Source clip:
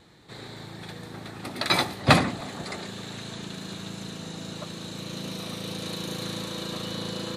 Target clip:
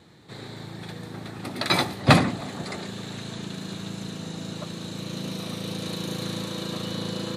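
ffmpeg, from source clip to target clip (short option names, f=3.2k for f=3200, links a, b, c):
-af "highpass=81,lowshelf=f=330:g=5"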